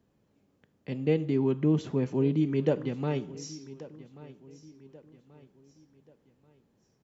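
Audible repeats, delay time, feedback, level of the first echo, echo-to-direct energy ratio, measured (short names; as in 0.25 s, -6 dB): 3, 1.134 s, 41%, -18.5 dB, -17.5 dB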